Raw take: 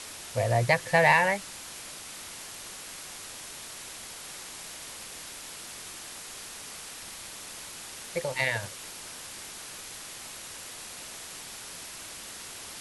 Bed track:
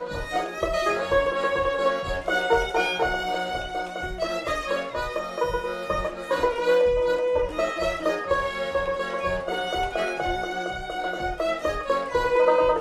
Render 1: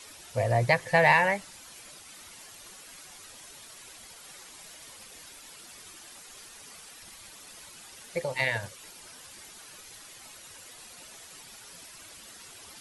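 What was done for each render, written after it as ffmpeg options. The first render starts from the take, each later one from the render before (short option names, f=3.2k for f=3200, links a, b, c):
-af "afftdn=nr=10:nf=-43"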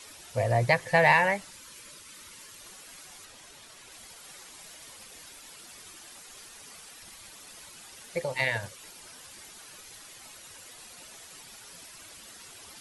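-filter_complex "[0:a]asettb=1/sr,asplit=3[a][b][c];[a]atrim=end=1.514[d];[b]atrim=start=1.51:end=2.61,asetpts=PTS-STARTPTS,afade=t=in:d=0.004:c=qsin,afade=t=out:st=1.096:d=0.004:c=qsin,asuperstop=centerf=740:order=4:qfactor=3.2[e];[c]atrim=start=2.606[f];[d][e]acrossfade=d=0.004:c1=hsin:c2=qsin[g];[g][f]acrossfade=d=0.004:c1=qsin:c2=hsin,asettb=1/sr,asplit=3[h][i][j];[h]atrim=end=3.254[k];[i]atrim=start=3.25:end=3.92,asetpts=PTS-STARTPTS,afade=t=in:d=0.004:c=qsin,afade=t=out:st=0.666:d=0.004:c=qsin,highshelf=f=7.6k:g=-7[l];[j]atrim=start=3.916[m];[k][l]acrossfade=d=0.004:c1=hsin:c2=qsin[n];[n][m]acrossfade=d=0.004:c1=qsin:c2=hsin"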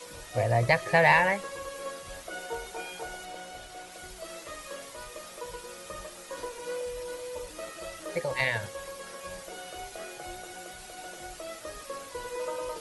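-filter_complex "[1:a]volume=-15.5dB[a];[0:a][a]amix=inputs=2:normalize=0"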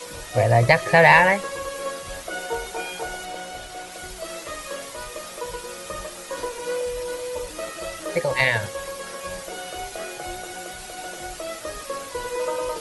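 -af "volume=8dB,alimiter=limit=-2dB:level=0:latency=1"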